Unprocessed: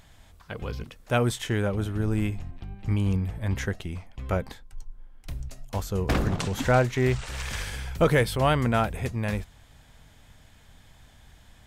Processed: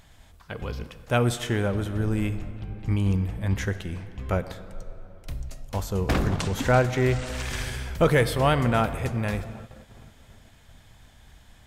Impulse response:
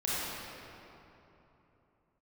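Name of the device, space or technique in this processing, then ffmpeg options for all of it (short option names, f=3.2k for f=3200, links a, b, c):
keyed gated reverb: -filter_complex "[0:a]asplit=3[a][b][c];[1:a]atrim=start_sample=2205[d];[b][d]afir=irnorm=-1:irlink=0[e];[c]apad=whole_len=514574[f];[e][f]sidechaingate=range=-33dB:threshold=-51dB:ratio=16:detection=peak,volume=-19dB[g];[a][g]amix=inputs=2:normalize=0"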